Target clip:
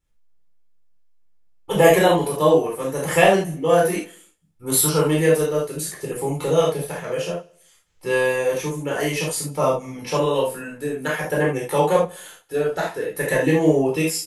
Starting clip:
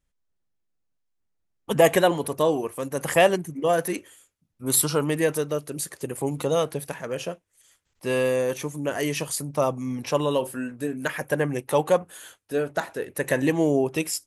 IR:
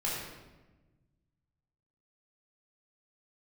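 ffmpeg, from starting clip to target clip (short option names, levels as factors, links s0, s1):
-filter_complex "[0:a]aecho=1:1:101|202|303:0.0668|0.0261|0.0102[s0];[1:a]atrim=start_sample=2205,atrim=end_sample=3969[s1];[s0][s1]afir=irnorm=-1:irlink=0"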